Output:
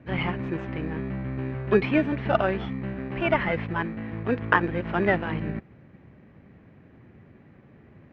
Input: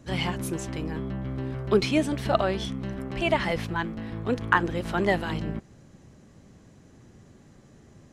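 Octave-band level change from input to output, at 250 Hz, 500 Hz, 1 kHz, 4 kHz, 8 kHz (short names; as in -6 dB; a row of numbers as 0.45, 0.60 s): +1.0 dB, +1.0 dB, +0.5 dB, -6.5 dB, under -25 dB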